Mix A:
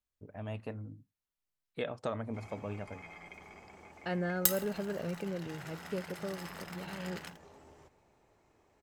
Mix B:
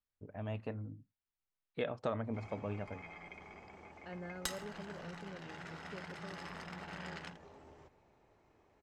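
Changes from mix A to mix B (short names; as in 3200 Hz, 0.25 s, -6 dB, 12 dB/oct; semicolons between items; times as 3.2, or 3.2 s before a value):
second voice -12.0 dB; master: add air absorption 98 m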